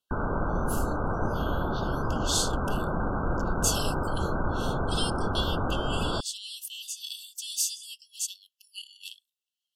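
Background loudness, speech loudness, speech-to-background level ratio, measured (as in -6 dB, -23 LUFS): -30.0 LUFS, -33.5 LUFS, -3.5 dB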